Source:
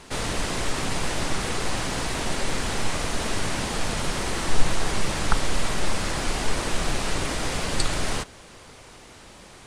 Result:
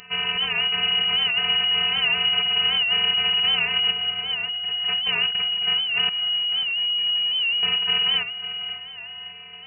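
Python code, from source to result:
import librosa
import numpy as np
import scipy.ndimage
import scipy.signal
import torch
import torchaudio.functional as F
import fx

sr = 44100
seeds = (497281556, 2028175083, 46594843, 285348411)

p1 = fx.crossing_spikes(x, sr, level_db=-11.0, at=(3.92, 4.85))
p2 = fx.over_compress(p1, sr, threshold_db=-25.0, ratio=-1.0)
p3 = fx.robotise(p2, sr, hz=273.0)
p4 = fx.comb_fb(p3, sr, f0_hz=110.0, decay_s=0.8, harmonics='all', damping=0.0, mix_pct=90, at=(6.09, 7.63))
p5 = p4 + fx.echo_feedback(p4, sr, ms=546, feedback_pct=42, wet_db=-11.5, dry=0)
p6 = fx.freq_invert(p5, sr, carrier_hz=2900)
y = fx.record_warp(p6, sr, rpm=78.0, depth_cents=100.0)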